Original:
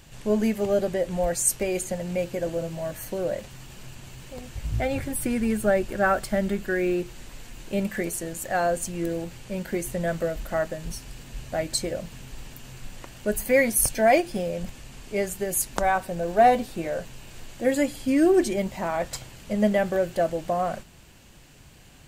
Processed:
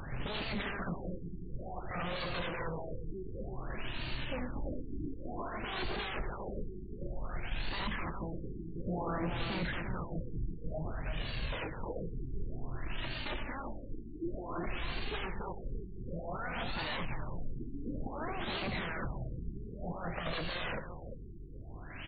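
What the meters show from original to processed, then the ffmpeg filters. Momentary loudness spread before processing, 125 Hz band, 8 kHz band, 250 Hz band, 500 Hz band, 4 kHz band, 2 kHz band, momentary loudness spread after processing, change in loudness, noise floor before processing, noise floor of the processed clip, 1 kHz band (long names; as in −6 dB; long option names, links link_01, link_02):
22 LU, −5.5 dB, below −40 dB, −14.0 dB, −18.0 dB, −3.0 dB, −9.0 dB, 8 LU, −14.5 dB, −50 dBFS, −45 dBFS, −14.0 dB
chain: -filter_complex "[0:a]acrossover=split=250|1300[link_01][link_02][link_03];[link_03]acompressor=mode=upward:threshold=-37dB:ratio=2.5[link_04];[link_01][link_02][link_04]amix=inputs=3:normalize=0,volume=13.5dB,asoftclip=hard,volume=-13.5dB,aeval=exprs='0.224*(cos(1*acos(clip(val(0)/0.224,-1,1)))-cos(1*PI/2))+0.00794*(cos(5*acos(clip(val(0)/0.224,-1,1)))-cos(5*PI/2))+0.0316*(cos(6*acos(clip(val(0)/0.224,-1,1)))-cos(6*PI/2))+0.0631*(cos(7*acos(clip(val(0)/0.224,-1,1)))-cos(7*PI/2))':channel_layout=same,aeval=exprs='0.0158*(abs(mod(val(0)/0.0158+3,4)-2)-1)':channel_layout=same,aphaser=in_gain=1:out_gain=1:delay=3.6:decay=0.4:speed=0.11:type=triangular,aeval=exprs='val(0)+0.00158*(sin(2*PI*50*n/s)+sin(2*PI*2*50*n/s)/2+sin(2*PI*3*50*n/s)/3+sin(2*PI*4*50*n/s)/4+sin(2*PI*5*50*n/s)/5)':channel_layout=same,aecho=1:1:342:0.473,afftfilt=real='re*lt(b*sr/1024,420*pow(4700/420,0.5+0.5*sin(2*PI*0.55*pts/sr)))':imag='im*lt(b*sr/1024,420*pow(4700/420,0.5+0.5*sin(2*PI*0.55*pts/sr)))':win_size=1024:overlap=0.75,volume=5dB"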